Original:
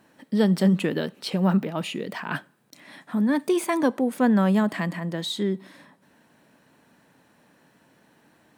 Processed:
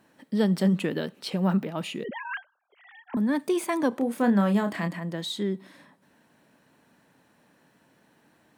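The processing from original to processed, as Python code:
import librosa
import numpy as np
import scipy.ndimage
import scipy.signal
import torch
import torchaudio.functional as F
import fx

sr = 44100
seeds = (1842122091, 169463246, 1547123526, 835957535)

y = fx.sine_speech(x, sr, at=(2.04, 3.17))
y = fx.doubler(y, sr, ms=30.0, db=-7.0, at=(3.91, 4.87), fade=0.02)
y = y * librosa.db_to_amplitude(-3.0)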